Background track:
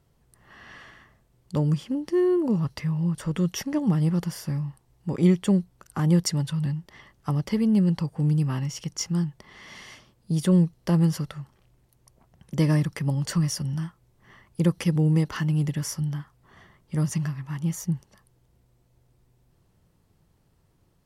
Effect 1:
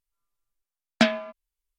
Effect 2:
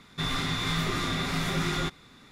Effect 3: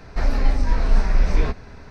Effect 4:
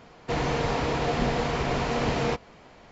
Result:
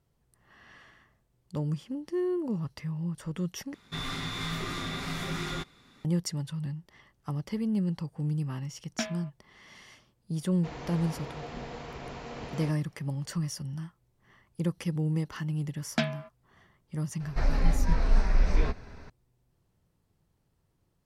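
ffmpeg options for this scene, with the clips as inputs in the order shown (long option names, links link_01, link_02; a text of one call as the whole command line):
ffmpeg -i bed.wav -i cue0.wav -i cue1.wav -i cue2.wav -i cue3.wav -filter_complex "[1:a]asplit=2[link_01][link_02];[0:a]volume=-8dB,asplit=2[link_03][link_04];[link_03]atrim=end=3.744[link_05];[2:a]atrim=end=2.31,asetpts=PTS-STARTPTS,volume=-5.5dB[link_06];[link_04]atrim=start=6.046[link_07];[link_01]atrim=end=1.78,asetpts=PTS-STARTPTS,volume=-13.5dB,afade=type=in:duration=0.004:curve=hsin,afade=type=out:start_time=1.776:duration=0.004:curve=hsin,adelay=7980[link_08];[4:a]atrim=end=2.91,asetpts=PTS-STARTPTS,volume=-14.5dB,afade=type=in:duration=0.004:curve=hsin,afade=type=out:start_time=2.906:duration=0.004:curve=hsin,adelay=10350[link_09];[link_02]atrim=end=1.78,asetpts=PTS-STARTPTS,volume=-8.5dB,afade=type=in:duration=0.004:curve=hsin,afade=type=out:start_time=1.776:duration=0.004:curve=hsin,adelay=14970[link_10];[3:a]atrim=end=1.9,asetpts=PTS-STARTPTS,volume=-6dB,afade=type=in:duration=0.004:curve=hsin,afade=type=out:start_time=1.896:duration=0.004:curve=hsin,adelay=17200[link_11];[link_05][link_06]acrossfade=duration=0.004:curve1=hsin:curve2=hsin[link_12];[link_12][link_07]acrossfade=duration=0.004:curve1=hsin:curve2=hsin[link_13];[link_13][link_08][link_09][link_10][link_11]amix=inputs=5:normalize=0" out.wav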